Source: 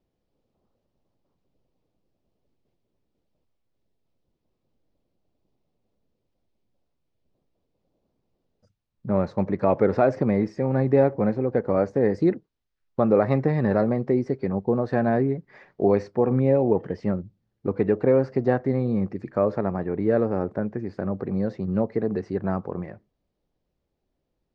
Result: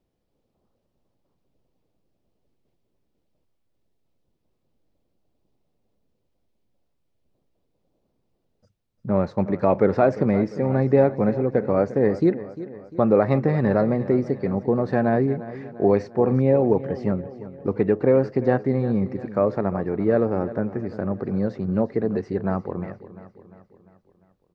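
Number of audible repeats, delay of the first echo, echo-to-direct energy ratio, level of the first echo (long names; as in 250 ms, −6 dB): 4, 349 ms, −14.0 dB, −15.5 dB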